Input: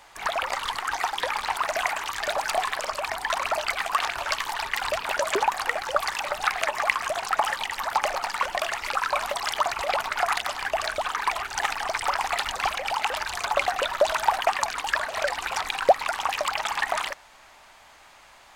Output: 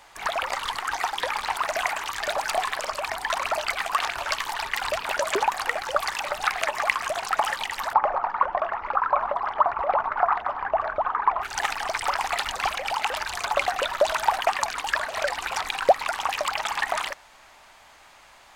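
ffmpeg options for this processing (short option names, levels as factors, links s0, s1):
-filter_complex "[0:a]asplit=3[s0][s1][s2];[s0]afade=t=out:st=7.92:d=0.02[s3];[s1]lowpass=f=1100:t=q:w=1.8,afade=t=in:st=7.92:d=0.02,afade=t=out:st=11.41:d=0.02[s4];[s2]afade=t=in:st=11.41:d=0.02[s5];[s3][s4][s5]amix=inputs=3:normalize=0"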